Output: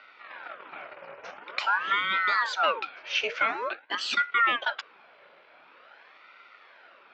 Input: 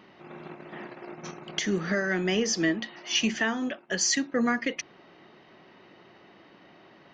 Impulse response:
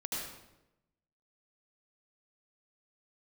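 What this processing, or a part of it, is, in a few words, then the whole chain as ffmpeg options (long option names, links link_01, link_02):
voice changer toy: -af "aeval=exprs='val(0)*sin(2*PI*950*n/s+950*0.8/0.47*sin(2*PI*0.47*n/s))':channel_layout=same,highpass=420,equalizer=frequency=580:width_type=q:width=4:gain=4,equalizer=frequency=1400:width_type=q:width=4:gain=8,equalizer=frequency=2400:width_type=q:width=4:gain=6,lowpass=frequency=4600:width=0.5412,lowpass=frequency=4600:width=1.3066"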